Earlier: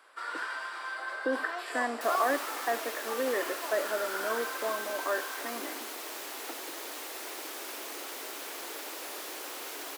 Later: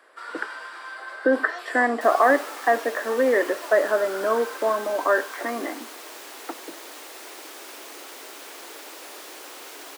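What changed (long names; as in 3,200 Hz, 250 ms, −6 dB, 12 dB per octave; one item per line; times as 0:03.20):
speech +11.0 dB
second sound: add parametric band 12,000 Hz −5.5 dB 0.2 octaves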